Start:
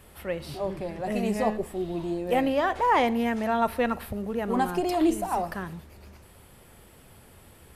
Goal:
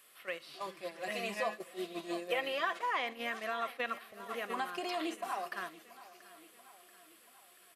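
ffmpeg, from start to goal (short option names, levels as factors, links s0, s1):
-filter_complex "[0:a]highpass=330,tiltshelf=f=1400:g=-9.5,acrossover=split=3900[s0][s1];[s1]acompressor=threshold=0.00282:ratio=4:attack=1:release=60[s2];[s0][s2]amix=inputs=2:normalize=0,equalizer=f=1100:t=o:w=0.4:g=4.5,aecho=1:1:684|1368|2052|2736|3420:0.188|0.104|0.057|0.0313|0.0172,acompressor=threshold=0.0141:ratio=2,asuperstop=centerf=890:order=4:qfactor=5.8,agate=range=0.355:threshold=0.01:ratio=16:detection=peak,asettb=1/sr,asplit=3[s3][s4][s5];[s3]atrim=end=0.534[s6];[s4]atrim=start=0.53:end=2.79,asetpts=PTS-STARTPTS,afade=t=in:d=0.004:c=qsin,afade=t=out:st=2.256:d=0.004:c=qsin,aecho=1:1:5.9:0.69,atrim=end_sample=99666[s7];[s5]atrim=start=2.786[s8];[s6][s7]acrossfade=d=0.004:c1=hsin:c2=qsin[s9];[s9][s8]acrossfade=d=0.004:c1=qsin:c2=hsin"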